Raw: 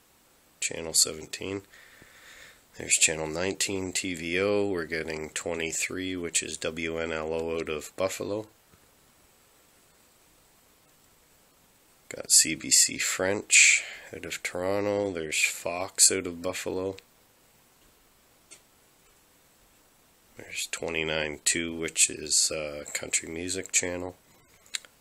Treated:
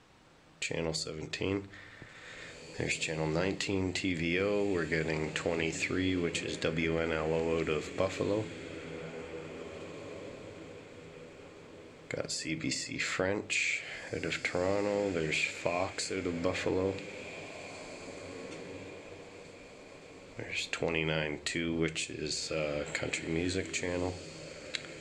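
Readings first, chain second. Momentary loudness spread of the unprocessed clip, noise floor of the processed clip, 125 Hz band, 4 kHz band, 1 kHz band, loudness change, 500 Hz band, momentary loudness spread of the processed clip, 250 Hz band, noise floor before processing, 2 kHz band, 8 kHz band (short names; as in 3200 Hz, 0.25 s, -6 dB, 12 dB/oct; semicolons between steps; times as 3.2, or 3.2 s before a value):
16 LU, -52 dBFS, +4.0 dB, -8.0 dB, -1.0 dB, -8.0 dB, -1.5 dB, 18 LU, +0.5 dB, -62 dBFS, -5.5 dB, -17.5 dB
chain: bell 120 Hz +5 dB 0.96 oct; compressor 6:1, threshold -29 dBFS, peak gain reduction 14.5 dB; air absorption 130 m; diffused feedback echo 1.989 s, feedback 42%, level -12 dB; shoebox room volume 490 m³, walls furnished, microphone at 0.49 m; gain +3 dB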